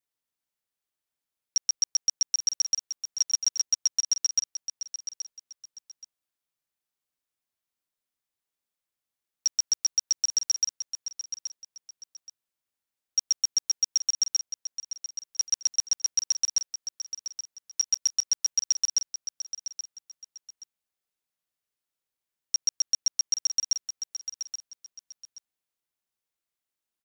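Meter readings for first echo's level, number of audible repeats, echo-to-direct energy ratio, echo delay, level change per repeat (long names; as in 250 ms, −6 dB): −10.0 dB, 2, −9.5 dB, 826 ms, −11.5 dB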